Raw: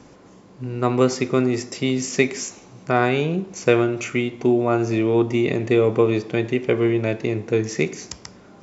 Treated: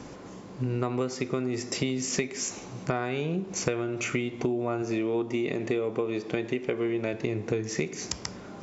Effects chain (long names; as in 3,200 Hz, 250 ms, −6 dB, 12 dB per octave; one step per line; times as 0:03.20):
0:04.82–0:07.14: parametric band 99 Hz −8.5 dB 0.94 octaves
downward compressor 12 to 1, threshold −29 dBFS, peak gain reduction 19 dB
level +4 dB